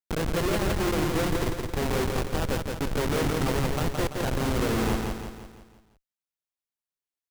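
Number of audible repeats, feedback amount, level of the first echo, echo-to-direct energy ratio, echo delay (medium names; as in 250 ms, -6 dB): 5, 48%, -4.0 dB, -3.0 dB, 169 ms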